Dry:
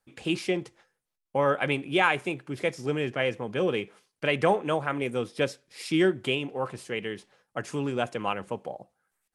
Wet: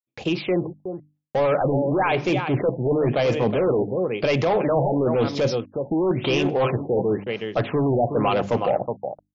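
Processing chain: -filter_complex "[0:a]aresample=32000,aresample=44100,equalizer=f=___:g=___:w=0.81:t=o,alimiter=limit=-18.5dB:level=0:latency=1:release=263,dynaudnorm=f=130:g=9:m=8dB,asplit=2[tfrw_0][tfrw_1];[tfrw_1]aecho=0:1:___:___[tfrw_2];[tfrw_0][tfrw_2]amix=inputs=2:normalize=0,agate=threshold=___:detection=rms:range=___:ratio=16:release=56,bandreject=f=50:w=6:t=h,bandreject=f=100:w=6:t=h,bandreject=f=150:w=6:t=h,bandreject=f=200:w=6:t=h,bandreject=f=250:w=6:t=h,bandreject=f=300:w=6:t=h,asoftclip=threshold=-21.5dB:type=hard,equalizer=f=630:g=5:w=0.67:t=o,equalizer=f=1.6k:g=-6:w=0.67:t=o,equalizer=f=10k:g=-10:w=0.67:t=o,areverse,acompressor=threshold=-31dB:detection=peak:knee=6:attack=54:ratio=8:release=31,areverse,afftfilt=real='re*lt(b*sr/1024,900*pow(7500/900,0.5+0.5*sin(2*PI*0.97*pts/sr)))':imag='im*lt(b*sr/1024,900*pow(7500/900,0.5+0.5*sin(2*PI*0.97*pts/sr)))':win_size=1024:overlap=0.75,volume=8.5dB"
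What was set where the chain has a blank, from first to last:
130, 3, 369, 0.237, -45dB, -43dB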